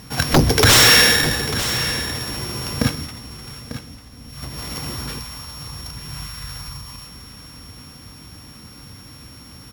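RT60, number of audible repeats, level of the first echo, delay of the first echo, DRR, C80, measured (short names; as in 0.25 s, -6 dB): none, 2, -18.5 dB, 0.129 s, none, none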